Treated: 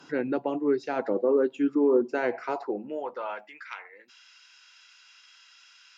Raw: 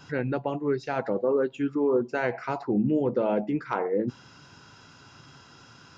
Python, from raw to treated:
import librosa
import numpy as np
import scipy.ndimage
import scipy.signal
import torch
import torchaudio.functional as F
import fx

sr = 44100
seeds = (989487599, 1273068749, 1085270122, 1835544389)

y = fx.cheby_harmonics(x, sr, harmonics=(4,), levels_db=(-42,), full_scale_db=-14.0)
y = fx.filter_sweep_highpass(y, sr, from_hz=290.0, to_hz=2300.0, start_s=2.36, end_s=3.75, q=1.8)
y = F.gain(torch.from_numpy(y), -2.0).numpy()